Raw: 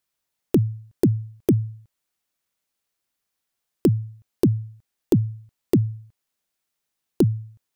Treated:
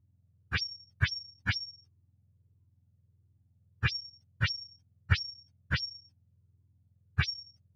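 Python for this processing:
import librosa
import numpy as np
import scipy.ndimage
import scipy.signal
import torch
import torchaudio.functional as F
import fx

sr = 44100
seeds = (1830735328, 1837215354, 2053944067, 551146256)

y = fx.octave_mirror(x, sr, pivot_hz=780.0)
y = fx.riaa(y, sr, side='playback')
y = fx.comb_cascade(y, sr, direction='falling', hz=1.5)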